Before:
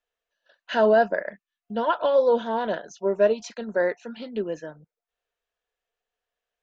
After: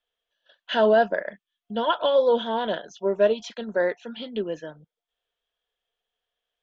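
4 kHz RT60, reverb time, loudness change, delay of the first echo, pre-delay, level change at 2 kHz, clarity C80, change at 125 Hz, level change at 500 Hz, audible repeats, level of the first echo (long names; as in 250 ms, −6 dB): no reverb audible, no reverb audible, 0.0 dB, no echo audible, no reverb audible, 0.0 dB, no reverb audible, can't be measured, 0.0 dB, no echo audible, no echo audible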